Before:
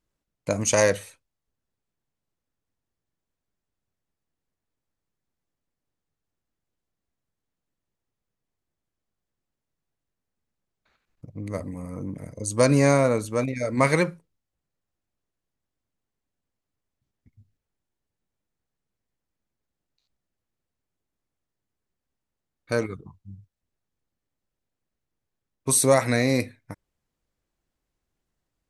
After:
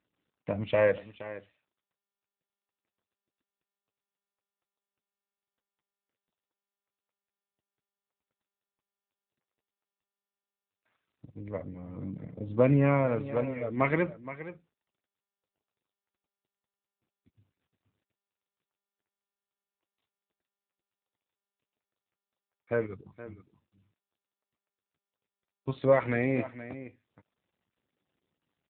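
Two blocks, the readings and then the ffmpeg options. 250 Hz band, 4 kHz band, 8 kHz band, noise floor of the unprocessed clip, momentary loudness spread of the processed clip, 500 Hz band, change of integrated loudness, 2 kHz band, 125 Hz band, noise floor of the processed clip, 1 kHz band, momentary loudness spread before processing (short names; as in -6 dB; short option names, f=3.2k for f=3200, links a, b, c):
-5.0 dB, under -15 dB, under -40 dB, -85 dBFS, 20 LU, -4.5 dB, -6.0 dB, -6.5 dB, -4.5 dB, under -85 dBFS, -6.5 dB, 17 LU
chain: -af "aecho=1:1:471:0.2,aphaser=in_gain=1:out_gain=1:delay=3.3:decay=0.28:speed=0.32:type=triangular,volume=-5dB" -ar 8000 -c:a libopencore_amrnb -b:a 7400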